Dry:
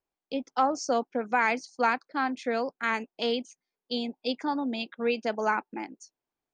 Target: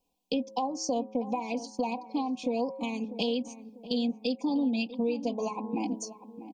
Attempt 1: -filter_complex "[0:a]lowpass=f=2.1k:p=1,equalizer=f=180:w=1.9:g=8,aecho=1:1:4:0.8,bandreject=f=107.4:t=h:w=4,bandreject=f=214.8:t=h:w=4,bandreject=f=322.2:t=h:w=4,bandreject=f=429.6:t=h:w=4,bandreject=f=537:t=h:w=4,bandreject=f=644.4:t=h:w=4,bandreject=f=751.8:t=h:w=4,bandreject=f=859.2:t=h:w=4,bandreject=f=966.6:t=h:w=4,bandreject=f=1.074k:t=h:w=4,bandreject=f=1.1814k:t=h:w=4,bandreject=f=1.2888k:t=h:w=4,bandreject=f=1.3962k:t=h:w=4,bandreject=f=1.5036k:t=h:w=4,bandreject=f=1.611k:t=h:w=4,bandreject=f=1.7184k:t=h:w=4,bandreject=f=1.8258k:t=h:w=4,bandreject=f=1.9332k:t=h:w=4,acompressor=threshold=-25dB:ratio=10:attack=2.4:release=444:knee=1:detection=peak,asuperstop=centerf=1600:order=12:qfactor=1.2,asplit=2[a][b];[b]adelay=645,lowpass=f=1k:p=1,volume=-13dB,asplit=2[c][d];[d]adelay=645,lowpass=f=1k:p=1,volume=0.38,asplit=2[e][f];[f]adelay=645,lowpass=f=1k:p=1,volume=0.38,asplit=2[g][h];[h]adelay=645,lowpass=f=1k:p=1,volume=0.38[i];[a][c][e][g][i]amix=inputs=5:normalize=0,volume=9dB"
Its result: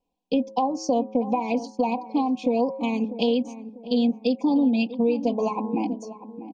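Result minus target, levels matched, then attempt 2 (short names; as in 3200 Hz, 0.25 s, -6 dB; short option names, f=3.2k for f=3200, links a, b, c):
compressor: peak gain reduction -8 dB; 2000 Hz band -3.0 dB
-filter_complex "[0:a]equalizer=f=180:w=1.9:g=8,aecho=1:1:4:0.8,bandreject=f=107.4:t=h:w=4,bandreject=f=214.8:t=h:w=4,bandreject=f=322.2:t=h:w=4,bandreject=f=429.6:t=h:w=4,bandreject=f=537:t=h:w=4,bandreject=f=644.4:t=h:w=4,bandreject=f=751.8:t=h:w=4,bandreject=f=859.2:t=h:w=4,bandreject=f=966.6:t=h:w=4,bandreject=f=1.074k:t=h:w=4,bandreject=f=1.1814k:t=h:w=4,bandreject=f=1.2888k:t=h:w=4,bandreject=f=1.3962k:t=h:w=4,bandreject=f=1.5036k:t=h:w=4,bandreject=f=1.611k:t=h:w=4,bandreject=f=1.7184k:t=h:w=4,bandreject=f=1.8258k:t=h:w=4,bandreject=f=1.9332k:t=h:w=4,acompressor=threshold=-33dB:ratio=10:attack=2.4:release=444:knee=1:detection=peak,asuperstop=centerf=1600:order=12:qfactor=1.2,asplit=2[a][b];[b]adelay=645,lowpass=f=1k:p=1,volume=-13dB,asplit=2[c][d];[d]adelay=645,lowpass=f=1k:p=1,volume=0.38,asplit=2[e][f];[f]adelay=645,lowpass=f=1k:p=1,volume=0.38,asplit=2[g][h];[h]adelay=645,lowpass=f=1k:p=1,volume=0.38[i];[a][c][e][g][i]amix=inputs=5:normalize=0,volume=9dB"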